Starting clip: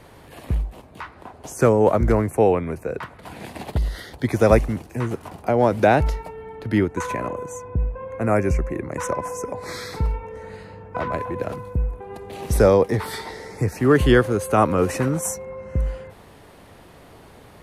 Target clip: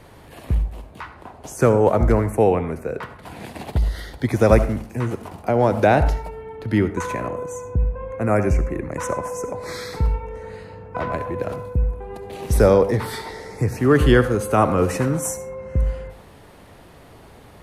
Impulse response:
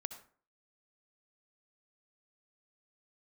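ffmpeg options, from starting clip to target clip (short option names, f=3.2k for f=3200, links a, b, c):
-filter_complex "[0:a]asplit=2[a][b];[1:a]atrim=start_sample=2205,lowshelf=f=110:g=5[c];[b][c]afir=irnorm=-1:irlink=0,volume=8.5dB[d];[a][d]amix=inputs=2:normalize=0,volume=-9.5dB"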